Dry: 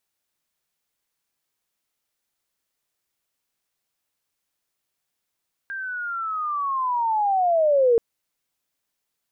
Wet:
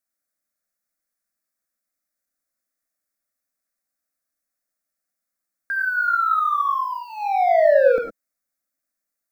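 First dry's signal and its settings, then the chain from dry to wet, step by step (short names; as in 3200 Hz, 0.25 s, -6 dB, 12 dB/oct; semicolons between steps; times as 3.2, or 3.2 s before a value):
chirp linear 1600 Hz -> 450 Hz -28.5 dBFS -> -13.5 dBFS 2.28 s
sample leveller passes 2; fixed phaser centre 610 Hz, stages 8; non-linear reverb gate 0.13 s rising, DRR 2 dB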